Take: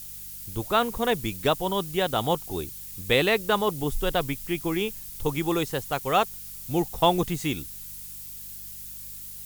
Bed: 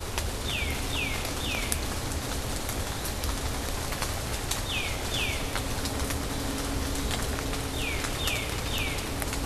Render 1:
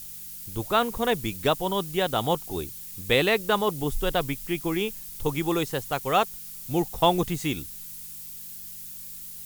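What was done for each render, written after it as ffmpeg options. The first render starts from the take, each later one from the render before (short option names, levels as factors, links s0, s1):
-af "bandreject=f=50:t=h:w=4,bandreject=f=100:t=h:w=4"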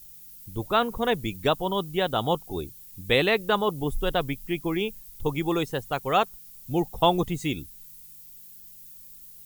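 -af "afftdn=nr=11:nf=-40"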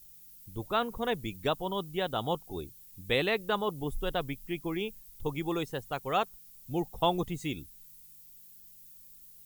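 -af "volume=0.473"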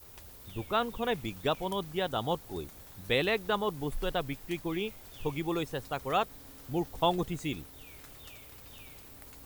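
-filter_complex "[1:a]volume=0.075[s0];[0:a][s0]amix=inputs=2:normalize=0"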